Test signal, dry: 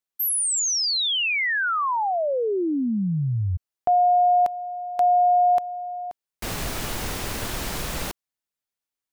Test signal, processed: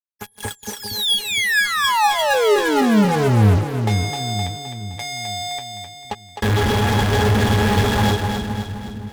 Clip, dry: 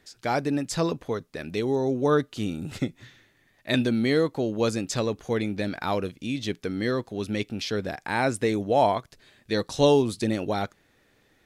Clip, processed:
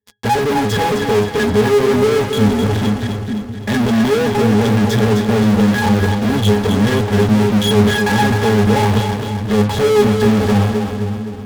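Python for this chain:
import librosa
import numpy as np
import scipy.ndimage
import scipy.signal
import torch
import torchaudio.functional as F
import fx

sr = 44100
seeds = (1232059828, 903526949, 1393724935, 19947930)

p1 = fx.leveller(x, sr, passes=5)
p2 = fx.octave_resonator(p1, sr, note='G#', decay_s=0.17)
p3 = fx.fuzz(p2, sr, gain_db=48.0, gate_db=-50.0)
p4 = p2 + (p3 * 10.0 ** (-6.0 / 20.0))
p5 = fx.echo_split(p4, sr, split_hz=320.0, low_ms=462, high_ms=259, feedback_pct=52, wet_db=-6)
y = p5 * 10.0 ** (1.0 / 20.0)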